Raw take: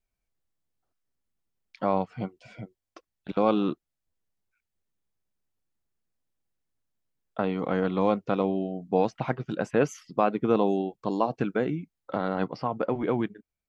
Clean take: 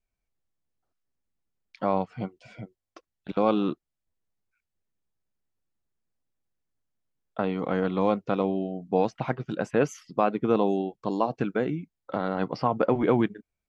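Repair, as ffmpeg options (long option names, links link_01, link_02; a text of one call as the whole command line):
ffmpeg -i in.wav -af "asetnsamples=nb_out_samples=441:pad=0,asendcmd='12.47 volume volume 4.5dB',volume=0dB" out.wav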